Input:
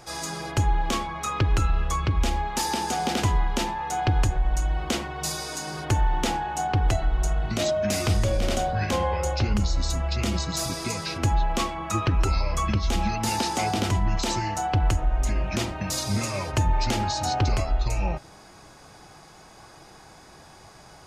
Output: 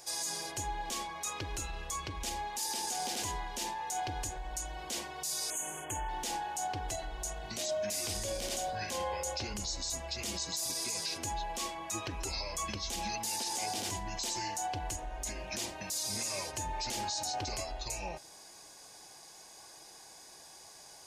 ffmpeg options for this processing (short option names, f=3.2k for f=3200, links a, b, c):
-filter_complex "[0:a]asettb=1/sr,asplit=3[a][b][c];[a]atrim=end=5.504[d];[b]atrim=start=5.5:end=6.09,asetpts=PTS-STARTPTS,afade=t=in:d=0.004:c=qsin,afade=t=out:st=0.586:d=0.004:c=qsin,asuperstop=centerf=4600:order=20:qfactor=1.6[e];[c]atrim=start=6.086[f];[d][e]acrossfade=d=0.004:c1=hsin:c2=qsin[g];[g][f]acrossfade=d=0.004:c1=qsin:c2=hsin,bass=f=250:g=-12,treble=f=4k:g=13,bandreject=f=1.3k:w=5.3,alimiter=limit=-18.5dB:level=0:latency=1:release=28,volume=-8dB"